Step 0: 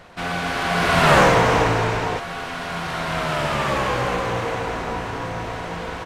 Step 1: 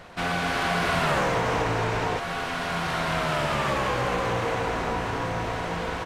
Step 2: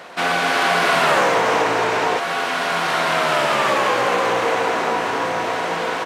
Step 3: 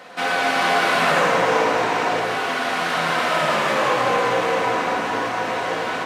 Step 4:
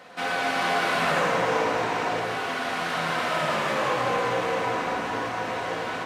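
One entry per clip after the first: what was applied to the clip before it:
downward compressor 5 to 1, threshold −22 dBFS, peak gain reduction 11 dB
high-pass filter 310 Hz 12 dB per octave; level +8.5 dB
rectangular room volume 1,500 cubic metres, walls mixed, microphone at 2 metres; level −5 dB
parametric band 74 Hz +7 dB 2 octaves; level −6 dB

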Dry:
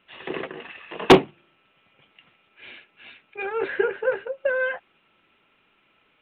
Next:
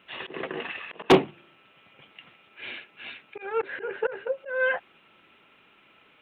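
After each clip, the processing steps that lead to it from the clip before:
high-pass filter 74 Hz 6 dB per octave
volume swells 327 ms
level +5.5 dB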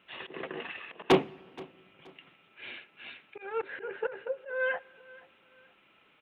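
repeating echo 475 ms, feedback 33%, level −22 dB
on a send at −22 dB: convolution reverb RT60 1.9 s, pre-delay 6 ms
on the sum: level −5.5 dB

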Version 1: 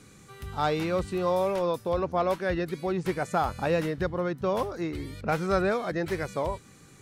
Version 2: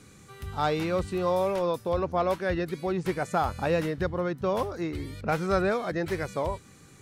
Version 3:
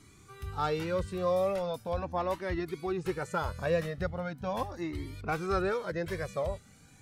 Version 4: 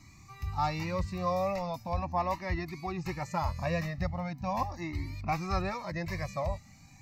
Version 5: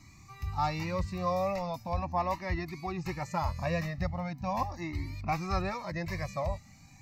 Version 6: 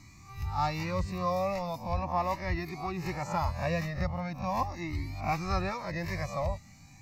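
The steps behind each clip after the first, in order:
parametric band 86 Hz +5 dB 0.26 octaves
flanger whose copies keep moving one way rising 0.4 Hz
phaser with its sweep stopped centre 2,200 Hz, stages 8; level +4.5 dB
no processing that can be heard
peak hold with a rise ahead of every peak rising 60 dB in 0.35 s

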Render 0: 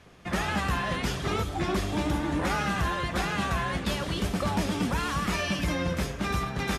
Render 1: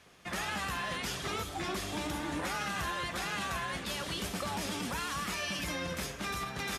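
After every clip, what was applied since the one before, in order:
spectral tilt +2 dB per octave
brickwall limiter −22 dBFS, peak gain reduction 5.5 dB
level −4.5 dB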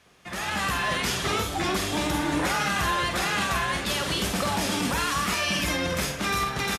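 automatic gain control gain up to 9 dB
double-tracking delay 48 ms −7 dB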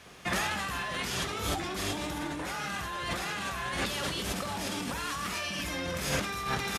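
compressor whose output falls as the input rises −34 dBFS, ratio −1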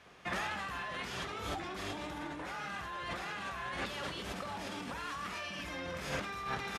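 low-pass filter 2,000 Hz 6 dB per octave
low-shelf EQ 470 Hz −6.5 dB
level −2.5 dB

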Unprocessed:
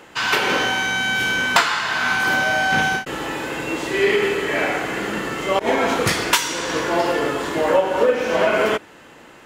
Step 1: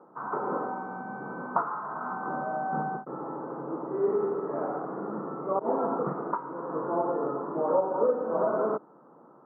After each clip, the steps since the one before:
Chebyshev band-pass filter 140–1,300 Hz, order 5
level −7.5 dB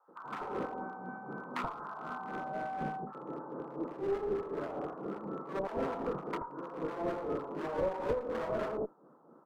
asymmetric clip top −29.5 dBFS
two-band tremolo in antiphase 4 Hz, depth 70%, crossover 790 Hz
multiband delay without the direct sound highs, lows 80 ms, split 930 Hz
level −1.5 dB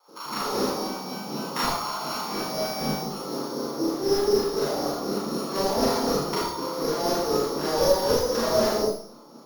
samples sorted by size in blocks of 8 samples
four-comb reverb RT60 0.55 s, combs from 27 ms, DRR −5 dB
level +6 dB

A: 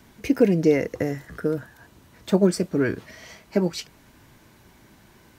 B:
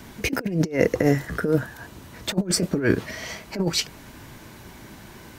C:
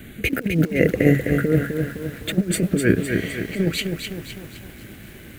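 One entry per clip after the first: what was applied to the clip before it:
compressor whose output falls as the input rises −25 dBFS, ratio −0.5; level +4.5 dB
phaser with its sweep stopped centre 2,300 Hz, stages 4; feedback echo at a low word length 256 ms, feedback 55%, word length 8 bits, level −5.5 dB; level +4 dB

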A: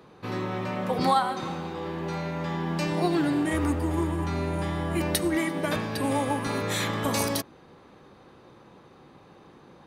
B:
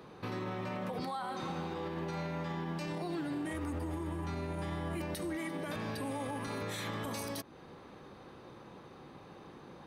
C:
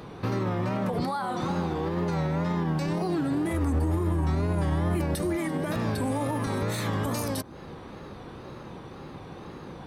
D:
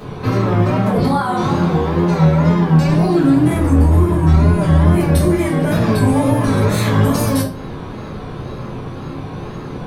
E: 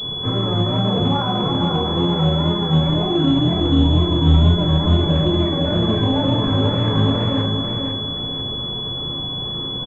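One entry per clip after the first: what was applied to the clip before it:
notch filter 7,100 Hz, Q 15; downward compressor 2 to 1, threshold −36 dBFS, peak gain reduction 10 dB; brickwall limiter −30 dBFS, peak gain reduction 11 dB
low-shelf EQ 130 Hz +9 dB; tape wow and flutter 100 cents; dynamic equaliser 2,800 Hz, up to −5 dB, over −57 dBFS, Q 1.1; level +8.5 dB
convolution reverb RT60 0.40 s, pre-delay 4 ms, DRR −7 dB; level +3.5 dB
on a send: repeating echo 494 ms, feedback 35%, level −5 dB; on the sum: switching amplifier with a slow clock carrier 3,400 Hz; level −5 dB

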